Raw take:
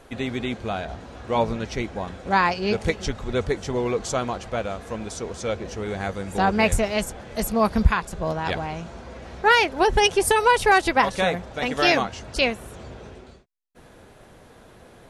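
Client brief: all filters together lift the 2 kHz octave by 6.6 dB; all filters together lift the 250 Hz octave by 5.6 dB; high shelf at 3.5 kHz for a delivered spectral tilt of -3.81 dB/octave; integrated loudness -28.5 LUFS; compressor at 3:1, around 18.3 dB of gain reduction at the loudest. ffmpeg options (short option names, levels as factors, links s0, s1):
-af "equalizer=f=250:t=o:g=7,equalizer=f=2000:t=o:g=6,highshelf=f=3500:g=7.5,acompressor=threshold=0.02:ratio=3,volume=1.78"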